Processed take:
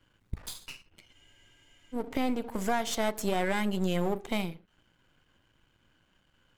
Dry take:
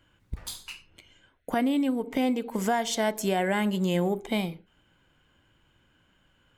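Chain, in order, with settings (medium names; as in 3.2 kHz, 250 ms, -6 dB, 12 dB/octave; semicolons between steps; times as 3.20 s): partial rectifier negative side -12 dB; spectral freeze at 1.15 s, 0.78 s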